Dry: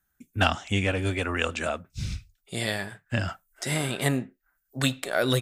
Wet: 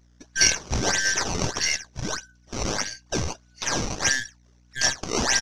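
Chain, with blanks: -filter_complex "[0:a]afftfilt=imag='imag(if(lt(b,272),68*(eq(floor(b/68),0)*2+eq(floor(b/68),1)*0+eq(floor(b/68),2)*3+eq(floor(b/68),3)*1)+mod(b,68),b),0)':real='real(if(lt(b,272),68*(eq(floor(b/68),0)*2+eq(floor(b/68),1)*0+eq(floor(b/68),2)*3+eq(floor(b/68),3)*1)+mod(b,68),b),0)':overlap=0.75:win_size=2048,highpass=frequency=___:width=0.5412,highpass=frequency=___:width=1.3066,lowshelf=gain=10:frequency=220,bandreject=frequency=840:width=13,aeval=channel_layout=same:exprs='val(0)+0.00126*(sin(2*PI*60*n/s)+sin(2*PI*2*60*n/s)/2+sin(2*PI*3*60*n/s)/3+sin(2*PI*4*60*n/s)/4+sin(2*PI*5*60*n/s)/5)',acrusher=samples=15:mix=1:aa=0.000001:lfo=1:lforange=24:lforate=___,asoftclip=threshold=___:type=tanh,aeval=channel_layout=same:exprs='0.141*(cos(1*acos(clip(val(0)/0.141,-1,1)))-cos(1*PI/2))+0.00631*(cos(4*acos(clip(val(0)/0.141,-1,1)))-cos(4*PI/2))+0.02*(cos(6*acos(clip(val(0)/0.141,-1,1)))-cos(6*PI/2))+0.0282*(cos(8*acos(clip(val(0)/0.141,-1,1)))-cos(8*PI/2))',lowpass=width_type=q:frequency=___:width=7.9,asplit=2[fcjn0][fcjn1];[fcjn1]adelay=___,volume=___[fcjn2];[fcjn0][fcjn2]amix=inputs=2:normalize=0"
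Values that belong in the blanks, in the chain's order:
49, 49, 1.6, -17dB, 5900, 16, -13.5dB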